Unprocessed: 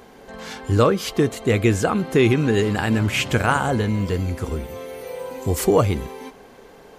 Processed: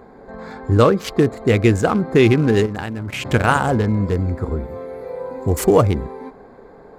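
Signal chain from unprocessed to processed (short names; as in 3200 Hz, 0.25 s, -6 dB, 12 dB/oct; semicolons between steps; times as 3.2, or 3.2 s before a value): Wiener smoothing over 15 samples; 2.66–3.25 level quantiser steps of 15 dB; gain +3.5 dB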